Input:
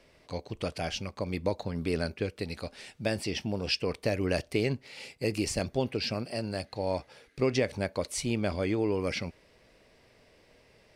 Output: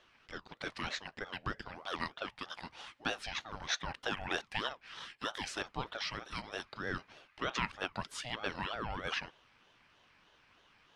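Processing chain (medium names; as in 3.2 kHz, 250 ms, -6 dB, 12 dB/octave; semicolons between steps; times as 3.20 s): band-pass filter 1.7 kHz, Q 0.99; ring modulator with a swept carrier 710 Hz, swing 50%, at 3.2 Hz; trim +4 dB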